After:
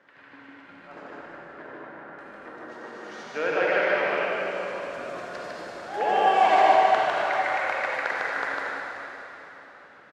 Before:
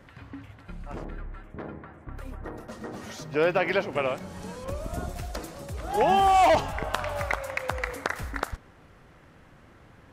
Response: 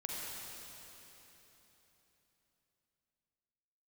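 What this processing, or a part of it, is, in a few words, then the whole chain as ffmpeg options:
station announcement: -filter_complex "[0:a]highpass=370,lowpass=4.7k,equalizer=f=1.6k:t=o:w=0.41:g=6.5,aecho=1:1:151.6|233.2:0.794|0.355[a];[1:a]atrim=start_sample=2205[b];[a][b]afir=irnorm=-1:irlink=0,volume=-2dB"

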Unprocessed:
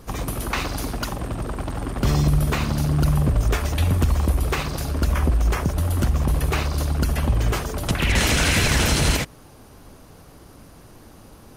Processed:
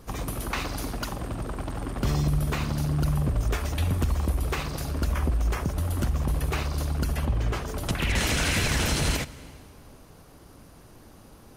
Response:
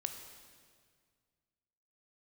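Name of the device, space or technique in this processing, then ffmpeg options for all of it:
compressed reverb return: -filter_complex "[0:a]asettb=1/sr,asplit=3[a][b][c];[a]atrim=end=7.254[d];[b]atrim=start=7.25:end=7.68,asetpts=PTS-STARTPTS,afade=t=in:d=0.004:c=qsin,afade=t=out:st=0.426:d=0.004:c=qsin,highshelf=f=7.6k:g=-11.5[e];[c]atrim=start=7.676[f];[d][e]acrossfade=d=0.004:c1=hsin:c2=qsin[g];[g][f]acrossfade=d=0.004:c1=qsin:c2=hsin,asplit=2[h][i];[1:a]atrim=start_sample=2205[j];[i][j]afir=irnorm=-1:irlink=0,acompressor=threshold=-22dB:ratio=6,volume=-6dB[k];[h][k]amix=inputs=2:normalize=0,volume=-7.5dB"

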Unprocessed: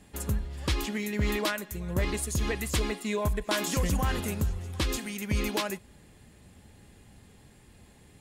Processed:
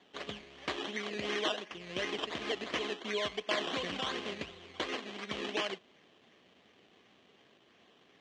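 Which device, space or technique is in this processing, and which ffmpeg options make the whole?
circuit-bent sampling toy: -af "acrusher=samples=16:mix=1:aa=0.000001:lfo=1:lforange=9.6:lforate=2.8,highpass=420,equalizer=f=540:t=q:w=4:g=-4,equalizer=f=880:t=q:w=4:g=-9,equalizer=f=1.4k:t=q:w=4:g=-7,equalizer=f=3.1k:t=q:w=4:g=8,equalizer=f=5k:t=q:w=4:g=-6,lowpass=f=5.6k:w=0.5412,lowpass=f=5.6k:w=1.3066"

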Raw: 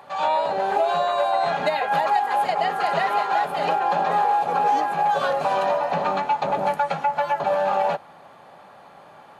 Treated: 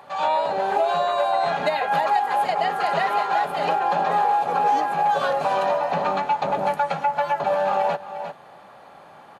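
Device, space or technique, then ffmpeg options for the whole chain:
ducked delay: -filter_complex "[0:a]asplit=3[a][b][c];[b]adelay=353,volume=-8dB[d];[c]apad=whole_len=429826[e];[d][e]sidechaincompress=threshold=-32dB:ratio=8:attack=16:release=343[f];[a][f]amix=inputs=2:normalize=0"

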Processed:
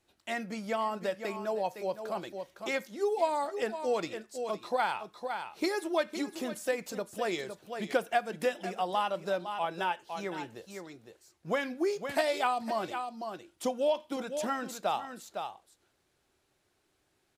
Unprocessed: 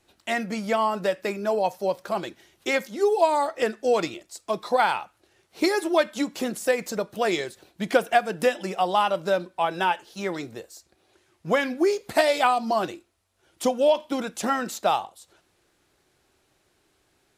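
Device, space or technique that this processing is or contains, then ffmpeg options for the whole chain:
ducked delay: -filter_complex "[0:a]asplit=3[a][b][c];[b]adelay=509,volume=-6.5dB[d];[c]apad=whole_len=788724[e];[d][e]sidechaincompress=threshold=-32dB:ratio=8:attack=24:release=156[f];[a][f]amix=inputs=2:normalize=0,volume=-8.5dB"

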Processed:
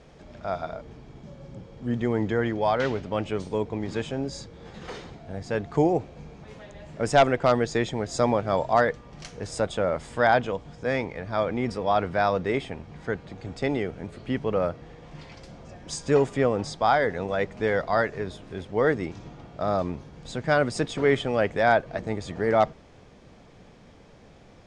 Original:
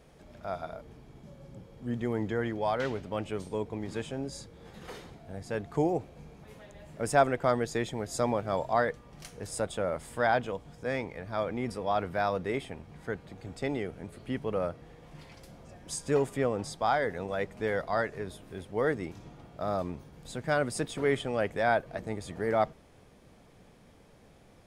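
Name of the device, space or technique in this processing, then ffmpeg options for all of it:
synthesiser wavefolder: -af "aeval=exprs='0.188*(abs(mod(val(0)/0.188+3,4)-2)-1)':c=same,lowpass=f=7.1k:w=0.5412,lowpass=f=7.1k:w=1.3066,volume=6dB"

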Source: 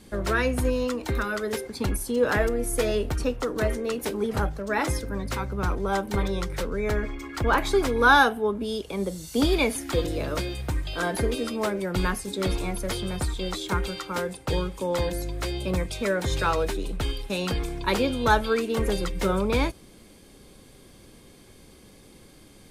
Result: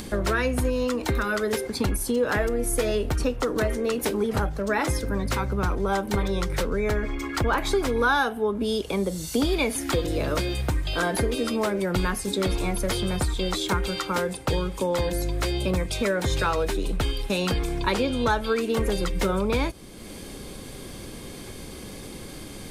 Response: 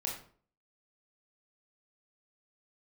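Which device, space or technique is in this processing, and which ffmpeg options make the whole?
upward and downward compression: -filter_complex "[0:a]acompressor=mode=upward:threshold=-37dB:ratio=2.5,acompressor=threshold=-29dB:ratio=3,asettb=1/sr,asplit=3[a][b][c];[a]atrim=end=17.854[d];[b]atrim=start=17.85:end=18.41,asetpts=PTS-STARTPTS,afade=t=in:d=0.004:c=qsin,afade=t=out:st=0.556:d=0.004:c=qsin,lowpass=11k[e];[c]atrim=start=18.406[f];[d][e]acrossfade=d=0.004:c1=hsin:c2=qsin[g];[g][f]acrossfade=d=0.004:c1=qsin:c2=hsin,volume=6.5dB"

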